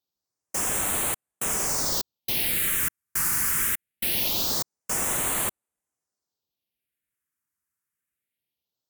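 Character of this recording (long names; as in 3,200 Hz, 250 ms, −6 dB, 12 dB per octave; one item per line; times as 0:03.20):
phaser sweep stages 4, 0.23 Hz, lowest notch 600–4,900 Hz
Ogg Vorbis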